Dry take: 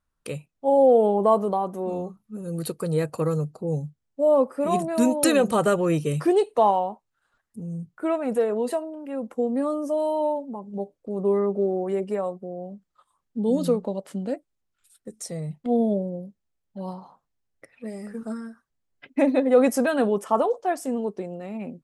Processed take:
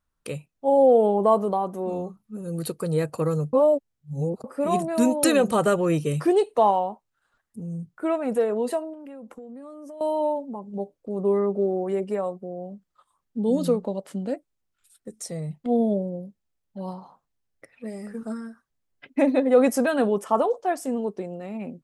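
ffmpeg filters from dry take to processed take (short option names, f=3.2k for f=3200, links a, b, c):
-filter_complex "[0:a]asettb=1/sr,asplit=3[a][b][c];[a]atrim=end=8.934[d];[b]atrim=start=8.93:end=10.01,asetpts=PTS-STARTPTS,afade=t=in:d=0.004:c=qsin,afade=t=out:st=1.076:d=0.004:c=qsin,acompressor=threshold=-37dB:ratio=16:attack=3.2:release=140:knee=1:detection=peak[e];[c]atrim=start=10.006[f];[d][e]acrossfade=d=0.004:c1=hsin:c2=qsin[g];[g][f]acrossfade=d=0.004:c1=qsin:c2=hsin,asplit=3[h][i][j];[h]atrim=end=3.532[k];[i]atrim=start=3.528:end=4.442,asetpts=PTS-STARTPTS,areverse[l];[j]atrim=start=4.438[m];[k][l]acrossfade=d=0.004:c1=hsin:c2=hsin[n];[n][m]acrossfade=d=0.004:c1=hsin:c2=hsin"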